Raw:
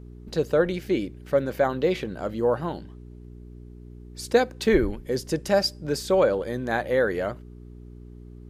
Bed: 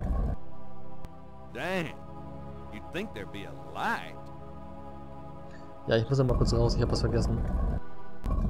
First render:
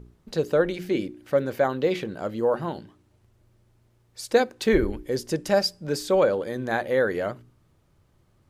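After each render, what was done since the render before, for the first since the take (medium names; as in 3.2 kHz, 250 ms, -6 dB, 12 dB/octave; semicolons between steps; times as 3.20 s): de-hum 60 Hz, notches 7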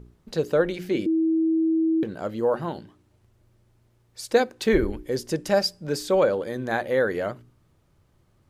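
1.06–2.03 s: bleep 323 Hz -18.5 dBFS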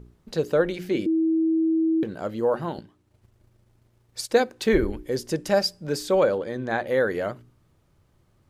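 2.78–4.30 s: transient shaper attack +7 dB, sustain -5 dB; 6.38–6.87 s: distance through air 62 m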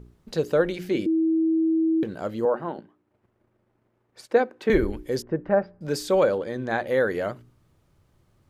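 2.45–4.70 s: three-band isolator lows -17 dB, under 180 Hz, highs -17 dB, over 2.4 kHz; 5.22–5.81 s: low-pass 1.7 kHz 24 dB/octave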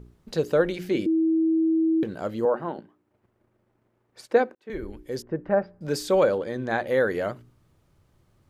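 4.55–6.06 s: fade in equal-power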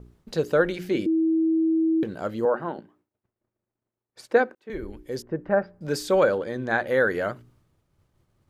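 expander -57 dBFS; dynamic bell 1.5 kHz, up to +6 dB, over -42 dBFS, Q 2.7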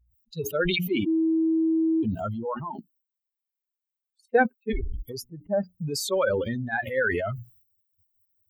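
expander on every frequency bin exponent 3; decay stretcher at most 23 dB/s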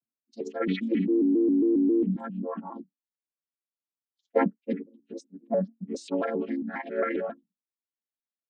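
vocoder on a held chord minor triad, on G#3; vibrato with a chosen wave square 3.7 Hz, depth 160 cents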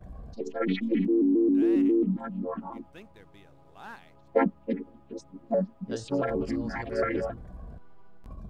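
add bed -14 dB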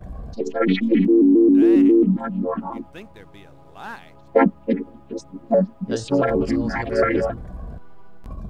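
trim +9 dB; peak limiter -3 dBFS, peak gain reduction 2.5 dB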